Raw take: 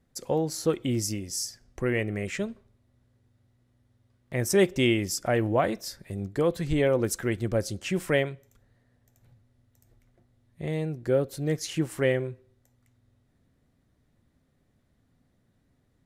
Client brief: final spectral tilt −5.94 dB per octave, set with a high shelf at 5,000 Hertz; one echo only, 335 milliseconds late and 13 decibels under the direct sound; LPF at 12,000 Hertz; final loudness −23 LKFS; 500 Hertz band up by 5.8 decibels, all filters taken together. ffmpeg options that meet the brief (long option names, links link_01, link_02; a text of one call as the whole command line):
ffmpeg -i in.wav -af "lowpass=12000,equalizer=frequency=500:width_type=o:gain=7,highshelf=frequency=5000:gain=-4.5,aecho=1:1:335:0.224,volume=1dB" out.wav